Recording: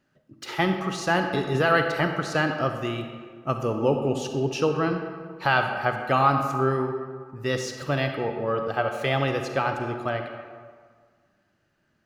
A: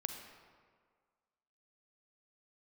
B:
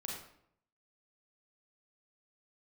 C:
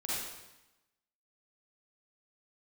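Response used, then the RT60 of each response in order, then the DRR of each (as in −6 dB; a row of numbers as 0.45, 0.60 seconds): A; 1.8, 0.70, 0.95 seconds; 5.0, −2.5, −8.5 decibels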